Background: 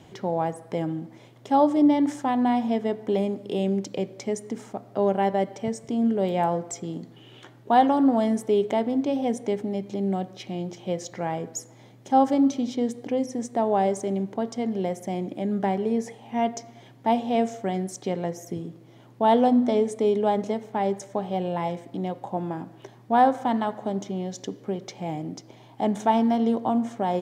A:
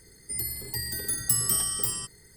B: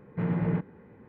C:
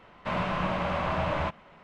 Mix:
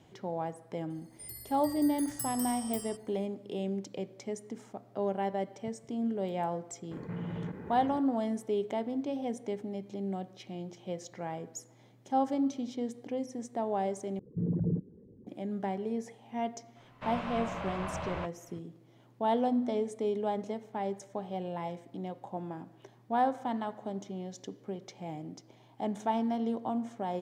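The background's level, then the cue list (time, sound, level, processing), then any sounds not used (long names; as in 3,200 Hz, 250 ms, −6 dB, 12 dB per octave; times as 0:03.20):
background −9.5 dB
0:00.90: mix in A −14 dB
0:06.91: mix in B −12 dB + envelope flattener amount 70%
0:14.19: overwrite with B −3 dB + spectral envelope exaggerated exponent 3
0:16.76: mix in C −9 dB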